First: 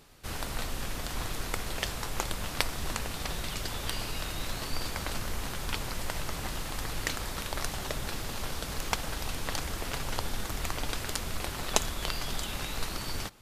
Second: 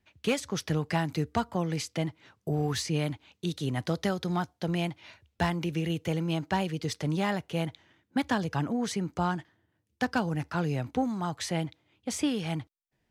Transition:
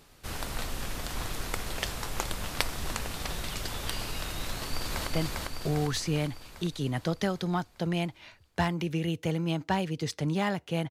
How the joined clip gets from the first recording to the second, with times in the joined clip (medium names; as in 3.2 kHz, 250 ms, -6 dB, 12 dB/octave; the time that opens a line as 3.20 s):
first
4.50–5.07 s: echo throw 400 ms, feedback 60%, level -1 dB
5.07 s: go over to second from 1.89 s